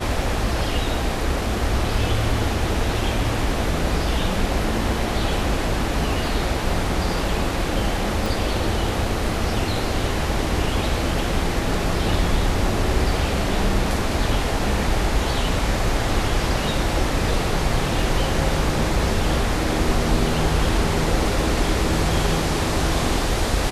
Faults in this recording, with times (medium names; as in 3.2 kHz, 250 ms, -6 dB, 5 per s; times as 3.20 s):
8.26 s: pop